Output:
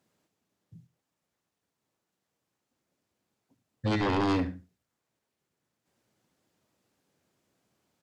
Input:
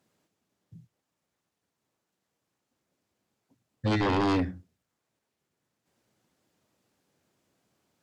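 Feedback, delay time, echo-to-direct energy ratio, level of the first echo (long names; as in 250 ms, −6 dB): 19%, 71 ms, −15.5 dB, −15.5 dB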